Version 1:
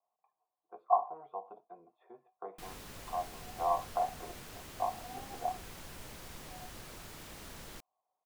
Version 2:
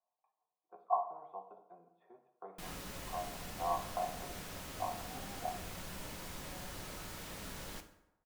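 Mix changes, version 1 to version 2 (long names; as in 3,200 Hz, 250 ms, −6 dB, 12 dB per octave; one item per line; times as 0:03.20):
speech −7.0 dB
reverb: on, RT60 0.90 s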